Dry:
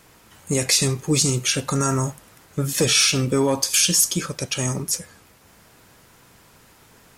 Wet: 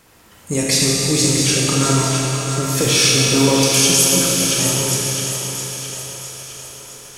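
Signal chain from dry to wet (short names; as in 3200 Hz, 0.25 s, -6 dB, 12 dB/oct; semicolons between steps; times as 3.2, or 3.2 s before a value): split-band echo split 400 Hz, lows 0.283 s, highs 0.662 s, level -7.5 dB; Schroeder reverb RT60 3.6 s, combs from 26 ms, DRR -3 dB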